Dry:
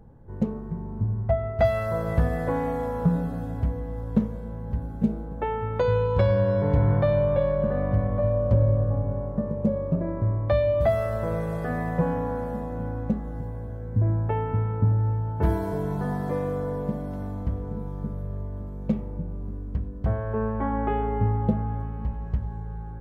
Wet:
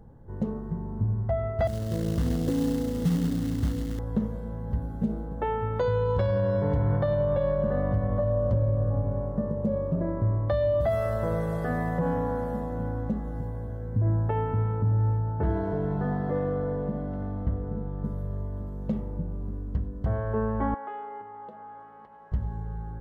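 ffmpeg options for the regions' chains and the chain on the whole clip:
-filter_complex "[0:a]asettb=1/sr,asplit=3[a][b][c];[a]atrim=end=1.674[d];[b]atrim=start=1.67:end=3.99,asetpts=PTS-STARTPTS,afade=t=in:d=0.004:c=qsin,afade=t=out:st=2.316:d=0.004:c=qsin,lowpass=f=310:t=q:w=2.4,acrusher=bits=4:mode=log:mix=0:aa=0.000001[e];[c]atrim=start=3.986[f];[d][e]acrossfade=d=0.004:c1=hsin:c2=qsin[g];[g][f]acrossfade=d=0.004:c1=qsin:c2=hsin,asettb=1/sr,asplit=3[h][i][j];[h]atrim=end=15.174[k];[i]atrim=start=15.17:end=18.04,asetpts=PTS-STARTPTS,afade=t=in:d=0.004:c=qsin,afade=t=out:st=2.866:d=0.004:c=qsin,lowpass=2.5k,bandreject=f=1k:w=15[l];[j]atrim=start=18.036[m];[k][l]acrossfade=d=0.004:c1=hsin:c2=qsin[n];[n][m]acrossfade=d=0.004:c1=qsin:c2=hsin,asettb=1/sr,asplit=3[o][p][q];[o]atrim=end=20.744[r];[p]atrim=start=20.74:end=22.32,asetpts=PTS-STARTPTS,afade=t=in:d=0.004:c=qsin,afade=t=out:st=1.576:d=0.004:c=qsin,highshelf=f=3.3k:g=-12,acompressor=threshold=-27dB:ratio=3:attack=3.2:release=140:knee=1:detection=peak,highpass=730[s];[q]atrim=start=22.316[t];[r][s]acrossfade=d=0.004:c1=hsin:c2=qsin[u];[u][t]acrossfade=d=0.004:c1=qsin:c2=hsin,bandreject=f=2.4k:w=5.3,alimiter=limit=-17.5dB:level=0:latency=1:release=61"

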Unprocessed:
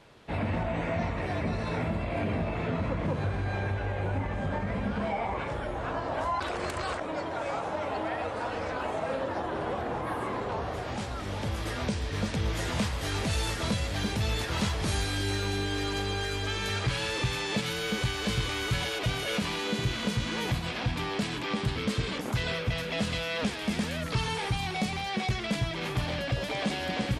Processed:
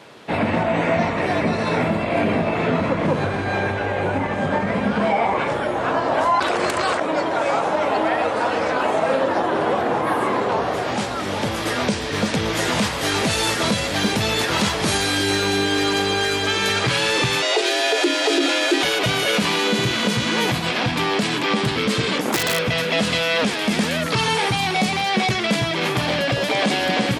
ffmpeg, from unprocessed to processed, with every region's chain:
-filter_complex "[0:a]asettb=1/sr,asplit=3[a][b][c];[a]atrim=end=17.424[d];[b]atrim=start=17.42:end=18.83,asetpts=PTS-STARTPTS,afade=t=in:d=0.004:c=qsin,afade=t=out:st=1.406:d=0.004:c=qsin,lowpass=f=10k:w=0.5412,lowpass=f=10k:w=1.3066,bandreject=f=890:w=9.4,afreqshift=230[e];[c]atrim=start=18.826[f];[d][e]acrossfade=d=0.004:c1=hsin:c2=qsin[g];[g][f]acrossfade=d=0.004:c1=qsin:c2=hsin,asettb=1/sr,asplit=3[h][i][j];[h]atrim=end=22.214[k];[i]atrim=start=22.21:end=22.68,asetpts=PTS-STARTPTS,afade=t=in:d=0.004:c=qsin,afade=t=out:st=0.466:d=0.004:c=qsin,highpass=f=60:w=0.5412,highpass=f=60:w=1.3066,aeval=exprs='(mod(14.1*val(0)+1,2)-1)/14.1':c=same[l];[j]atrim=start=22.676[m];[k][l]acrossfade=d=0.004:c1=hsin:c2=qsin[n];[n][m]acrossfade=d=0.004:c1=qsin:c2=hsin,highpass=180,alimiter=level_in=20.5dB:limit=-1dB:release=50:level=0:latency=1,volume=-8dB"

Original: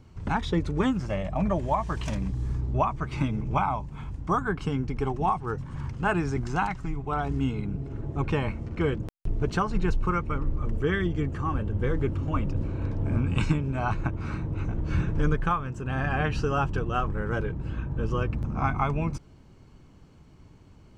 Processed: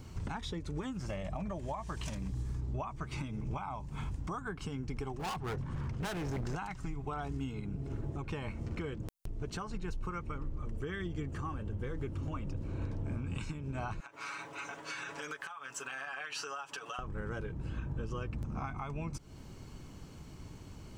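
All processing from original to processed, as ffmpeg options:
-filter_complex "[0:a]asettb=1/sr,asplit=3[a][b][c];[a]atrim=end=5.194[d];[b]atrim=start=5.19:end=6.55,asetpts=PTS-STARTPTS,afade=t=in:d=0.004:c=qsin,afade=t=out:st=1.356:d=0.004:c=qsin,lowpass=f=2.3k:p=1,asoftclip=type=hard:threshold=-31dB[e];[c]atrim=start=6.546[f];[d][e]acrossfade=d=0.004:c1=hsin:c2=qsin[g];[g][f]acrossfade=d=0.004:c1=qsin:c2=hsin,asettb=1/sr,asplit=3[h][i][j];[h]atrim=end=14.004[k];[i]atrim=start=14:end=16.99,asetpts=PTS-STARTPTS,afade=t=in:d=0.004:c=qsin,afade=t=out:st=2.986:d=0.004:c=qsin,highpass=980,aecho=1:1:7.1:0.73,atrim=end_sample=131859,acompressor=threshold=-41dB:ratio=12:attack=3.2:release=140:knee=1:detection=peak[l];[j]atrim=start=16.986[m];[k][l]acrossfade=d=0.004:c1=hsin:c2=qsin[n];[n][m]acrossfade=d=0.004:c1=qsin:c2=hsin,highshelf=f=4.8k:g=11,acompressor=threshold=-40dB:ratio=3,alimiter=level_in=8dB:limit=-24dB:level=0:latency=1:release=292,volume=-8dB,volume=3.5dB"

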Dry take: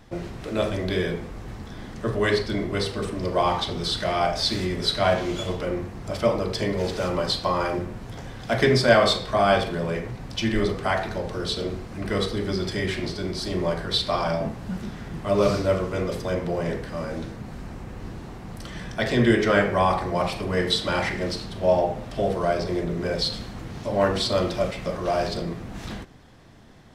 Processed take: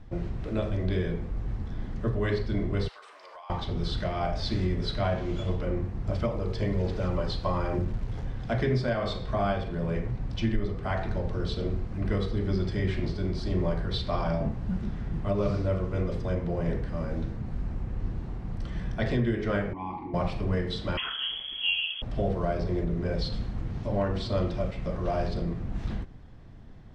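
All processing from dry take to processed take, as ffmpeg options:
-filter_complex "[0:a]asettb=1/sr,asplit=3[a][b][c];[a]atrim=end=2.884[d];[b]atrim=start=2.88:end=3.5,asetpts=PTS-STARTPTS,afade=t=in:d=0.004:c=qsin,afade=t=out:st=0.616:d=0.004:c=qsin,highpass=f=810:w=0.5412,highpass=f=810:w=1.3066,acompressor=threshold=-36dB:ratio=10:attack=3.2:release=140:knee=1:detection=peak[e];[c]atrim=start=3.496[f];[d][e]acrossfade=d=0.004:c1=hsin:c2=qsin[g];[g][f]acrossfade=d=0.004:c1=qsin:c2=hsin,asettb=1/sr,asplit=3[h][i][j];[h]atrim=end=6.084[k];[i]atrim=start=6.08:end=8.25,asetpts=PTS-STARTPTS,afade=t=in:d=0.004:c=qsin,afade=t=out:st=2.166:d=0.004:c=qsin,aphaser=in_gain=1:out_gain=1:delay=2.4:decay=0.21:speed=1.2:type=sinusoidal,acrusher=bits=8:dc=4:mix=0:aa=0.000001[l];[j]atrim=start=8.246[m];[k][l]acrossfade=d=0.004:c1=hsin:c2=qsin[n];[n][m]acrossfade=d=0.004:c1=qsin:c2=hsin,asettb=1/sr,asplit=3[o][p][q];[o]atrim=end=19.734[r];[p]atrim=start=19.73:end=20.14,asetpts=PTS-STARTPTS,afade=t=in:d=0.004:c=qsin,afade=t=out:st=0.406:d=0.004:c=qsin,asplit=3[s][t][u];[s]bandpass=f=300:t=q:w=8,volume=0dB[v];[t]bandpass=f=870:t=q:w=8,volume=-6dB[w];[u]bandpass=f=2.24k:t=q:w=8,volume=-9dB[x];[v][w][x]amix=inputs=3:normalize=0,acontrast=55,asplit=2[y][z];[z]adelay=42,volume=-6dB[aa];[y][aa]amix=inputs=2:normalize=0,atrim=end_sample=18081[ab];[q]atrim=start=20.136[ac];[r][ab]acrossfade=d=0.004:c1=hsin:c2=qsin[ad];[ad][ac]acrossfade=d=0.004:c1=qsin:c2=hsin,asettb=1/sr,asplit=3[ae][af][ag];[ae]atrim=end=20.974[ah];[af]atrim=start=20.97:end=22.02,asetpts=PTS-STARTPTS,afade=t=in:d=0.004:c=qsin,afade=t=out:st=1.046:d=0.004:c=qsin,lowshelf=f=300:g=10,lowpass=f=2.9k:t=q:w=0.5098,lowpass=f=2.9k:t=q:w=0.6013,lowpass=f=2.9k:t=q:w=0.9,lowpass=f=2.9k:t=q:w=2.563,afreqshift=-3400[ai];[ag]atrim=start=22.016[aj];[ah][ai]acrossfade=d=0.004:c1=hsin:c2=qsin[ak];[ak][aj]acrossfade=d=0.004:c1=qsin:c2=hsin,acrossover=split=8500[al][am];[am]acompressor=threshold=-57dB:ratio=4:attack=1:release=60[an];[al][an]amix=inputs=2:normalize=0,aemphasis=mode=reproduction:type=bsi,alimiter=limit=-10.5dB:level=0:latency=1:release=435,volume=-6.5dB"

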